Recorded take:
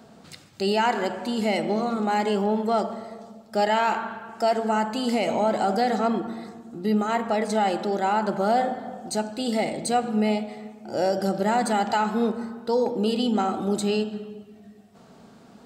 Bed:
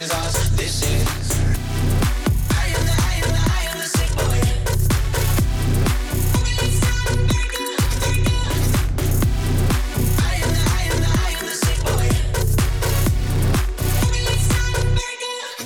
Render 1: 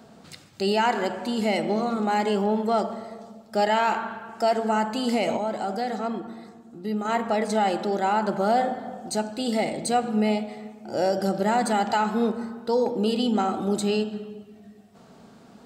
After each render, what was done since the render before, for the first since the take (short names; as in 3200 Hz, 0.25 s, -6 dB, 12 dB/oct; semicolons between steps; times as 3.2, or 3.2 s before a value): 5.37–7.05 gain -5.5 dB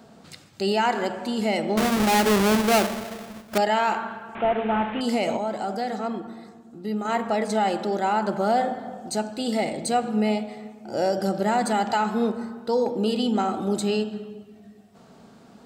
1.77–3.58 half-waves squared off; 4.35–5.01 delta modulation 16 kbps, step -28.5 dBFS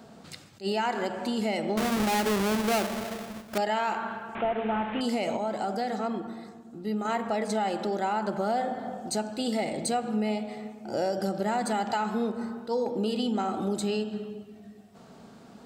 compressor 2.5:1, threshold -27 dBFS, peak gain reduction 7.5 dB; attack slew limiter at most 320 dB/s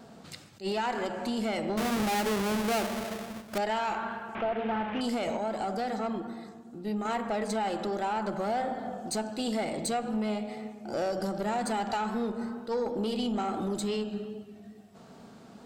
tube stage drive 23 dB, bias 0.25; wow and flutter 28 cents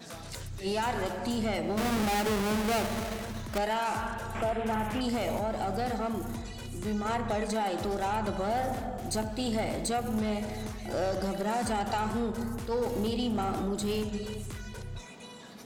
add bed -22.5 dB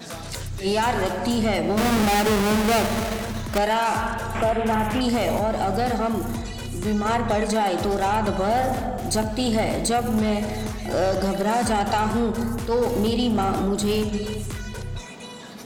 gain +8.5 dB